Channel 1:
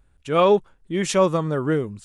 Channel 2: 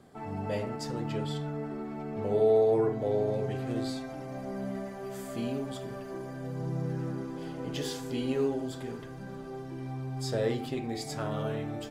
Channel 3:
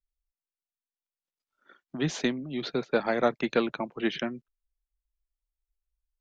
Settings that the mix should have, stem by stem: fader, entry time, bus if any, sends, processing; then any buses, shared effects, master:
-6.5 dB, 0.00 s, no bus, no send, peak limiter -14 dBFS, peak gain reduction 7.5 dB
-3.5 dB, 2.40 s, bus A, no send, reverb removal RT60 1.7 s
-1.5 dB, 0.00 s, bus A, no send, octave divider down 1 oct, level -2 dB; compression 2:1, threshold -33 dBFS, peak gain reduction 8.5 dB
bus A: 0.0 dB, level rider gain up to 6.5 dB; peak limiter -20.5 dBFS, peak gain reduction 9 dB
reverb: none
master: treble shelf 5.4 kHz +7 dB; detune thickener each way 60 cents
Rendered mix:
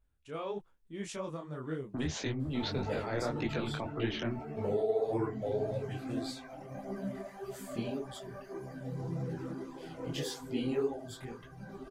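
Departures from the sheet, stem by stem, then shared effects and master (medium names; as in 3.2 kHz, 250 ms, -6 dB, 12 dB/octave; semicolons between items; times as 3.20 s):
stem 1 -6.5 dB -> -13.5 dB; master: missing treble shelf 5.4 kHz +7 dB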